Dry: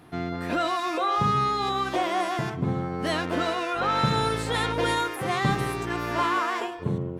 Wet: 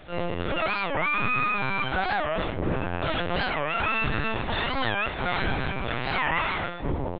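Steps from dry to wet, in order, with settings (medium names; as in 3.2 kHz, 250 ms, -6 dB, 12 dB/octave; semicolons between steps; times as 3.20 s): saturation -24 dBFS, distortion -12 dB; harmony voices -3 st -14 dB, +7 st -11 dB, +12 st 0 dB; word length cut 8-bit, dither none; LPC vocoder at 8 kHz pitch kept; warped record 45 rpm, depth 250 cents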